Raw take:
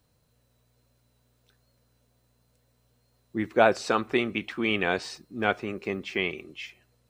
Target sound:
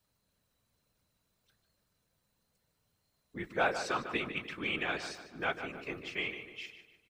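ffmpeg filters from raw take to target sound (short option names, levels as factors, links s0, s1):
-filter_complex "[0:a]acrossover=split=890[s0][s1];[s1]acontrast=79[s2];[s0][s2]amix=inputs=2:normalize=0,afftfilt=real='hypot(re,im)*cos(2*PI*random(0))':imag='hypot(re,im)*sin(2*PI*random(1))':win_size=512:overlap=0.75,asplit=2[s3][s4];[s4]adelay=149,lowpass=f=3100:p=1,volume=0.355,asplit=2[s5][s6];[s6]adelay=149,lowpass=f=3100:p=1,volume=0.47,asplit=2[s7][s8];[s8]adelay=149,lowpass=f=3100:p=1,volume=0.47,asplit=2[s9][s10];[s10]adelay=149,lowpass=f=3100:p=1,volume=0.47,asplit=2[s11][s12];[s12]adelay=149,lowpass=f=3100:p=1,volume=0.47[s13];[s3][s5][s7][s9][s11][s13]amix=inputs=6:normalize=0,volume=0.473"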